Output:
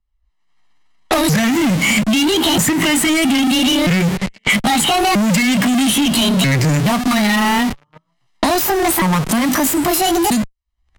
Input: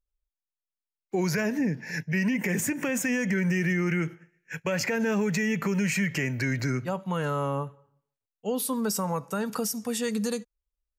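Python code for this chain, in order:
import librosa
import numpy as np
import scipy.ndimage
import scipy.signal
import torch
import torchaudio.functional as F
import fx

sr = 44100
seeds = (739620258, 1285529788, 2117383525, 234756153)

p1 = fx.pitch_ramps(x, sr, semitones=9.5, every_ms=1288)
p2 = fx.recorder_agc(p1, sr, target_db=-24.5, rise_db_per_s=50.0, max_gain_db=30)
p3 = fx.high_shelf(p2, sr, hz=5000.0, db=5.5)
p4 = p3 + 0.76 * np.pad(p3, (int(1.0 * sr / 1000.0), 0))[:len(p3)]
p5 = fx.dynamic_eq(p4, sr, hz=160.0, q=1.4, threshold_db=-41.0, ratio=4.0, max_db=4)
p6 = fx.leveller(p5, sr, passes=5)
p7 = fx.schmitt(p6, sr, flips_db=-24.5)
p8 = p6 + (p7 * 10.0 ** (-5.0 / 20.0))
p9 = fx.env_lowpass(p8, sr, base_hz=2600.0, full_db=-9.0)
p10 = fx.band_squash(p9, sr, depth_pct=70)
y = p10 * 10.0 ** (-5.5 / 20.0)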